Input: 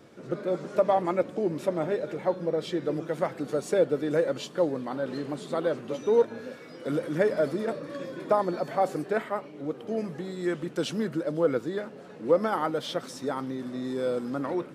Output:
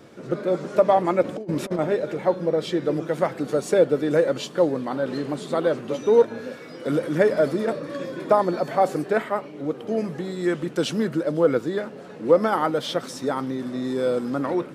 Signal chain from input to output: 1.24–1.79 s: compressor with a negative ratio -32 dBFS, ratio -0.5; trim +5.5 dB

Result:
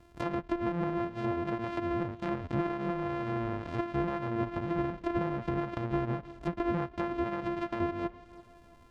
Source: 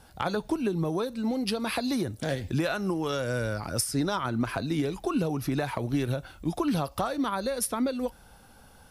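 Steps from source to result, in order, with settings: sorted samples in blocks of 128 samples; treble shelf 2.7 kHz -9 dB; tape echo 336 ms, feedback 56%, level -18.5 dB, low-pass 2.2 kHz; low-pass that closes with the level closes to 2 kHz, closed at -26 dBFS; trim -3 dB

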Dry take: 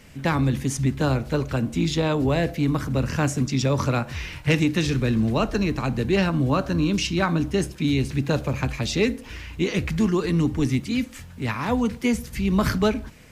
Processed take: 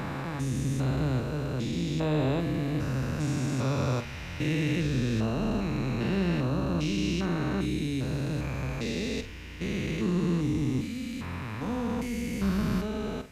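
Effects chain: spectrogram pixelated in time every 400 ms; flutter echo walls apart 7.9 m, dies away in 0.26 s; trim -3.5 dB

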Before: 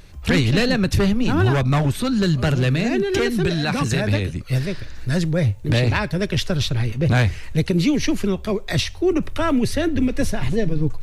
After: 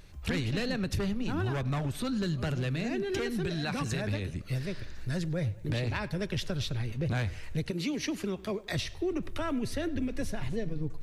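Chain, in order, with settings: 7.70–8.74 s: high-pass 360 Hz -> 99 Hz 6 dB/octave; compression 2.5:1, threshold -22 dBFS, peak gain reduction 6.5 dB; tape echo 99 ms, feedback 62%, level -19 dB, low-pass 4.4 kHz; trim -8 dB

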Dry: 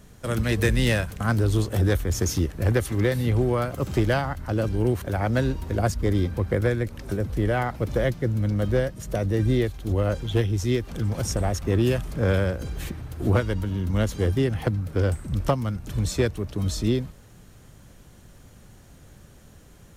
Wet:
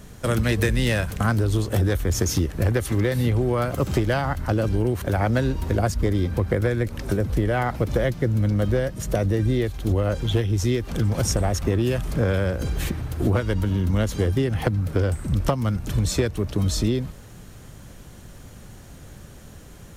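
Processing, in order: compression, threshold -24 dBFS, peak gain reduction 8 dB; trim +6.5 dB

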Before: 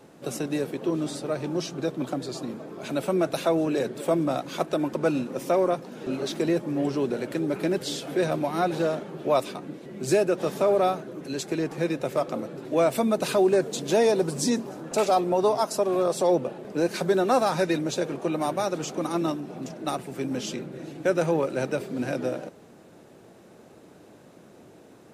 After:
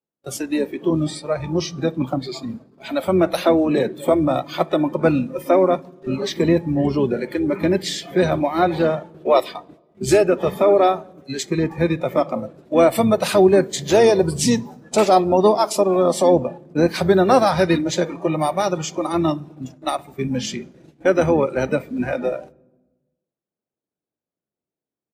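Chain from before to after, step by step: gate -37 dBFS, range -33 dB; harmony voices -12 st -11 dB, -4 st -18 dB; spectral noise reduction 15 dB; on a send: reverberation RT60 1.2 s, pre-delay 3 ms, DRR 24 dB; on the sum: trim +7 dB

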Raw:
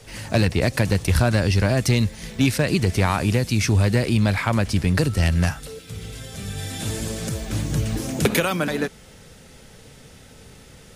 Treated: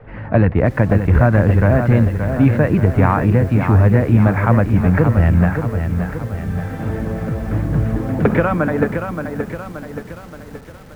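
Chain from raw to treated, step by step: low-pass 1.7 kHz 24 dB/octave; band-stop 380 Hz, Q 12; bit-crushed delay 575 ms, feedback 55%, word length 8-bit, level -7 dB; trim +6 dB

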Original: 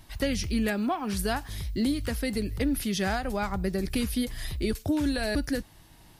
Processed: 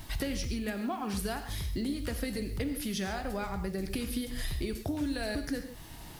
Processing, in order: compression 10:1, threshold -38 dBFS, peak gain reduction 16 dB; bit crusher 11-bit; gated-style reverb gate 170 ms flat, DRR 7 dB; trim +6.5 dB

